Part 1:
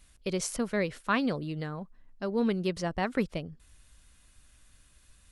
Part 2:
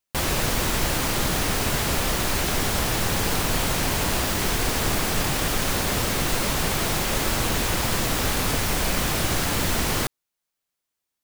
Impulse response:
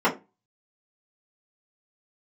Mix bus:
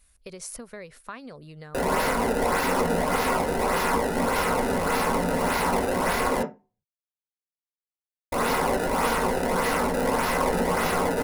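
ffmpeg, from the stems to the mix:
-filter_complex "[0:a]acompressor=threshold=0.0282:ratio=10,volume=0.708[s0];[1:a]acrusher=samples=23:mix=1:aa=0.000001:lfo=1:lforange=36.8:lforate=1.7,adelay=1600,volume=0.531,asplit=3[s1][s2][s3];[s1]atrim=end=6.43,asetpts=PTS-STARTPTS,afade=t=out:st=6.426:d=0.004:c=hsin[s4];[s2]atrim=start=6.43:end=8.32,asetpts=PTS-STARTPTS,volume=0[s5];[s3]atrim=start=8.32,asetpts=PTS-STARTPTS,afade=t=in:d=0.004:c=hsin[s6];[s4][s5][s6]concat=n=3:v=0:a=1,asplit=2[s7][s8];[s8]volume=0.266[s9];[2:a]atrim=start_sample=2205[s10];[s9][s10]afir=irnorm=-1:irlink=0[s11];[s0][s7][s11]amix=inputs=3:normalize=0,equalizer=f=125:t=o:w=0.33:g=-10,equalizer=f=200:t=o:w=0.33:g=-6,equalizer=f=315:t=o:w=0.33:g=-9,equalizer=f=3150:t=o:w=0.33:g=-5,equalizer=f=10000:t=o:w=0.33:g=8"

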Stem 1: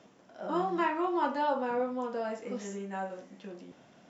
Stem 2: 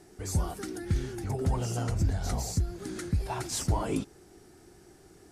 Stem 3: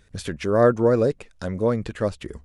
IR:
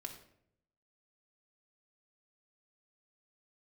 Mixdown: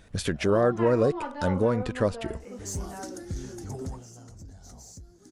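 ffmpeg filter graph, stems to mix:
-filter_complex "[0:a]lowpass=4400,volume=0.562[s0];[1:a]equalizer=f=250:t=o:w=0.67:g=5,equalizer=f=2500:t=o:w=0.67:g=-7,equalizer=f=6300:t=o:w=0.67:g=11,asoftclip=type=tanh:threshold=0.0841,adelay=2400,volume=0.596,afade=t=out:st=3.83:d=0.2:silence=0.237137[s1];[2:a]alimiter=limit=0.15:level=0:latency=1:release=410,volume=1.33[s2];[s0][s1][s2]amix=inputs=3:normalize=0"

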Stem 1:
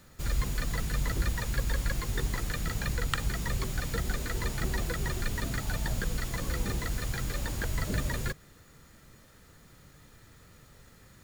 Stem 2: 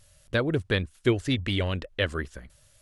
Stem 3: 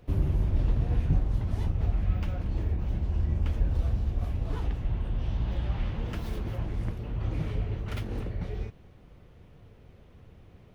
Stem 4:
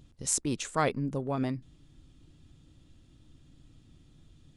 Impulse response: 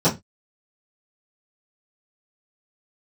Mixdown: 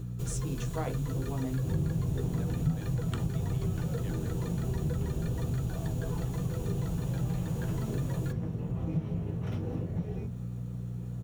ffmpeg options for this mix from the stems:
-filter_complex "[0:a]aeval=exprs='val(0)+0.01*(sin(2*PI*60*n/s)+sin(2*PI*2*60*n/s)/2+sin(2*PI*3*60*n/s)/3+sin(2*PI*4*60*n/s)/4+sin(2*PI*5*60*n/s)/5)':c=same,equalizer=f=125:t=o:w=0.33:g=10,equalizer=f=400:t=o:w=0.33:g=9,equalizer=f=2000:t=o:w=0.33:g=-10,equalizer=f=5000:t=o:w=0.33:g=-5,volume=1,asplit=2[s0][s1];[s1]volume=0.075[s2];[1:a]adelay=2050,volume=0.133[s3];[2:a]adelay=1550,volume=0.631,asplit=2[s4][s5];[s5]volume=0.282[s6];[3:a]volume=0.668,asplit=2[s7][s8];[s8]volume=0.112[s9];[4:a]atrim=start_sample=2205[s10];[s2][s6][s9]amix=inputs=3:normalize=0[s11];[s11][s10]afir=irnorm=-1:irlink=0[s12];[s0][s3][s4][s7][s12]amix=inputs=5:normalize=0,acompressor=threshold=0.0141:ratio=2"

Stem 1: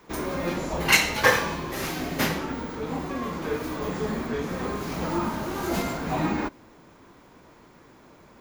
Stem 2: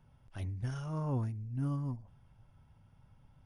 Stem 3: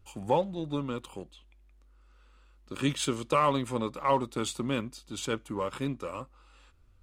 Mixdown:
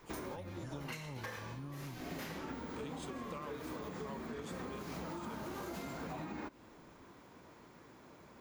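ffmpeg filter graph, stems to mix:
-filter_complex "[0:a]highpass=53,volume=0.531[s0];[1:a]acrossover=split=120|270[s1][s2][s3];[s1]acompressor=threshold=0.00398:ratio=4[s4];[s2]acompressor=threshold=0.00447:ratio=4[s5];[s3]acompressor=threshold=0.00501:ratio=4[s6];[s4][s5][s6]amix=inputs=3:normalize=0,volume=0.631,asplit=2[s7][s8];[2:a]volume=0.251[s9];[s8]apad=whole_len=370872[s10];[s0][s10]sidechaincompress=threshold=0.00141:ratio=12:attack=16:release=208[s11];[s11][s9]amix=inputs=2:normalize=0,alimiter=level_in=1.68:limit=0.0631:level=0:latency=1:release=325,volume=0.596,volume=1[s12];[s7][s12]amix=inputs=2:normalize=0,acompressor=threshold=0.01:ratio=6"

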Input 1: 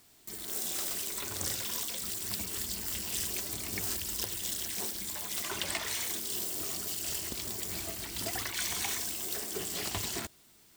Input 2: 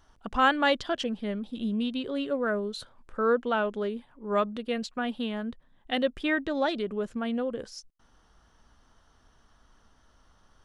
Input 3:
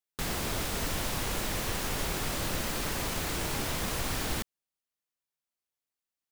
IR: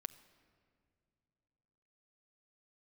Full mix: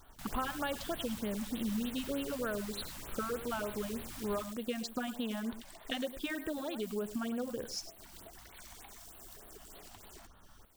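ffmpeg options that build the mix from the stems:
-filter_complex "[0:a]equalizer=f=670:w=0.82:g=10.5,acompressor=threshold=0.00631:ratio=4,volume=0.335[s0];[1:a]bandreject=f=2000:w=12,acompressor=threshold=0.0178:ratio=16,volume=1.33,asplit=2[s1][s2];[s2]volume=0.211[s3];[2:a]volume=0.15,asplit=2[s4][s5];[s5]volume=0.501[s6];[s3][s6]amix=inputs=2:normalize=0,aecho=0:1:106:1[s7];[s0][s1][s4][s7]amix=inputs=4:normalize=0,highshelf=f=7700:g=3.5,afftfilt=real='re*(1-between(b*sr/1024,360*pow(6600/360,0.5+0.5*sin(2*PI*3.3*pts/sr))/1.41,360*pow(6600/360,0.5+0.5*sin(2*PI*3.3*pts/sr))*1.41))':imag='im*(1-between(b*sr/1024,360*pow(6600/360,0.5+0.5*sin(2*PI*3.3*pts/sr))/1.41,360*pow(6600/360,0.5+0.5*sin(2*PI*3.3*pts/sr))*1.41))':win_size=1024:overlap=0.75"

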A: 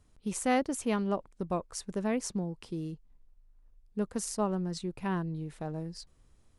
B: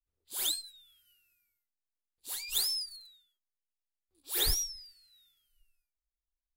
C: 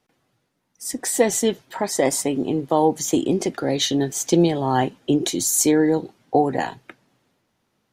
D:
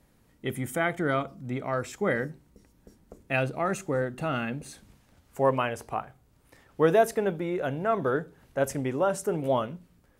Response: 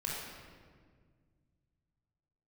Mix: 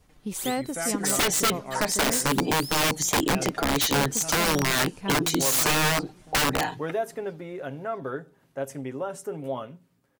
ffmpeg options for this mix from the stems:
-filter_complex "[0:a]volume=1.33,asplit=2[s0][s1];[s1]volume=0.126[s2];[1:a]volume=0.794[s3];[2:a]adynamicequalizer=threshold=0.0282:dfrequency=630:dqfactor=1.6:tfrequency=630:tqfactor=1.6:attack=5:release=100:ratio=0.375:range=2.5:mode=cutabove:tftype=bell,aecho=1:1:6.6:0.81,aeval=exprs='(mod(4.73*val(0)+1,2)-1)/4.73':c=same,volume=1.26[s4];[3:a]highpass=120,aecho=1:1:7.4:0.41,volume=0.531[s5];[s2]aecho=0:1:656|1312|1968|2624|3280|3936|4592:1|0.47|0.221|0.104|0.0488|0.0229|0.0108[s6];[s0][s3][s4][s5][s6]amix=inputs=5:normalize=0,acompressor=threshold=0.0316:ratio=1.5"

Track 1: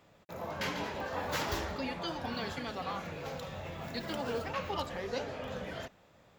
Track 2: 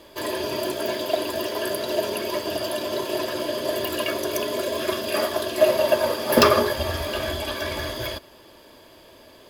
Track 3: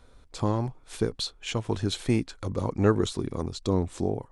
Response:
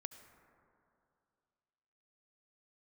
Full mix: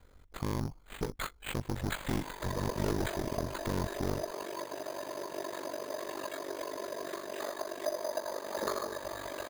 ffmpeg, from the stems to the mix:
-filter_complex "[0:a]adelay=1450,volume=0.501[s0];[1:a]adelay=2250,volume=0.501,asplit=2[s1][s2];[s2]volume=0.282[s3];[2:a]aeval=exprs='(tanh(28.2*val(0)+0.75)-tanh(0.75))/28.2':c=same,volume=1.33[s4];[s0][s1]amix=inputs=2:normalize=0,highpass=f=130:w=0.5412,highpass=f=130:w=1.3066,equalizer=f=210:t=q:w=4:g=-9,equalizer=f=1000:t=q:w=4:g=6,equalizer=f=1900:t=q:w=4:g=6,lowpass=f=3000:w=0.5412,lowpass=f=3000:w=1.3066,acompressor=threshold=0.0141:ratio=3,volume=1[s5];[3:a]atrim=start_sample=2205[s6];[s3][s6]afir=irnorm=-1:irlink=0[s7];[s4][s5][s7]amix=inputs=3:normalize=0,acrusher=samples=8:mix=1:aa=0.000001,aeval=exprs='val(0)*sin(2*PI*24*n/s)':c=same"

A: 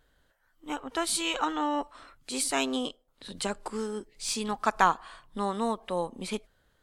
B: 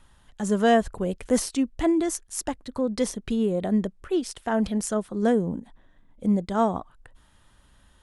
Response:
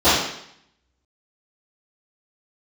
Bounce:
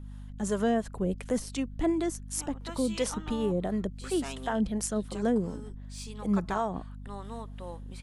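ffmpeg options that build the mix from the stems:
-filter_complex "[0:a]adelay=1700,volume=0.237[s0];[1:a]acrossover=split=450[s1][s2];[s1]aeval=exprs='val(0)*(1-0.7/2+0.7/2*cos(2*PI*2.8*n/s))':c=same[s3];[s2]aeval=exprs='val(0)*(1-0.7/2-0.7/2*cos(2*PI*2.8*n/s))':c=same[s4];[s3][s4]amix=inputs=2:normalize=0,aeval=exprs='val(0)+0.00891*(sin(2*PI*50*n/s)+sin(2*PI*2*50*n/s)/2+sin(2*PI*3*50*n/s)/3+sin(2*PI*4*50*n/s)/4+sin(2*PI*5*50*n/s)/5)':c=same,volume=1[s5];[s0][s5]amix=inputs=2:normalize=0,alimiter=limit=0.126:level=0:latency=1:release=252"

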